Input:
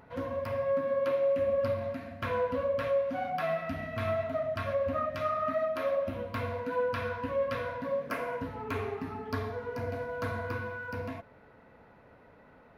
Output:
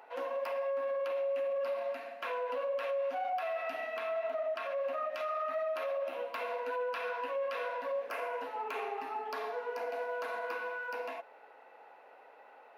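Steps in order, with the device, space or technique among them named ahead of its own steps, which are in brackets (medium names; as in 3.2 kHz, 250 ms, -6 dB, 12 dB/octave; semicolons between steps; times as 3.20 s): laptop speaker (high-pass 420 Hz 24 dB/octave; peaking EQ 800 Hz +11 dB 0.24 oct; peaking EQ 2.7 kHz +8 dB 0.22 oct; peak limiter -28.5 dBFS, peak gain reduction 9 dB); 3.98–4.81 s: treble shelf 4.7 kHz -6 dB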